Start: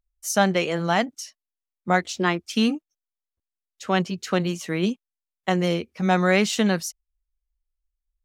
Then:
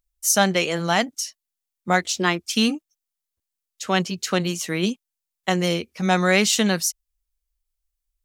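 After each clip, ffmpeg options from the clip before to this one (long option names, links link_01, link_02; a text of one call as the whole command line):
ffmpeg -i in.wav -af "highshelf=frequency=3300:gain=10.5" out.wav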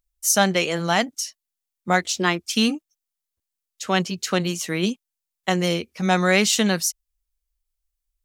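ffmpeg -i in.wav -af anull out.wav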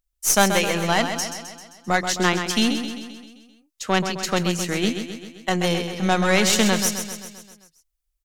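ffmpeg -i in.wav -af "aeval=exprs='0.668*(cos(1*acos(clip(val(0)/0.668,-1,1)))-cos(1*PI/2))+0.0944*(cos(4*acos(clip(val(0)/0.668,-1,1)))-cos(4*PI/2))':channel_layout=same,aecho=1:1:131|262|393|524|655|786|917:0.398|0.231|0.134|0.0777|0.0451|0.0261|0.0152" out.wav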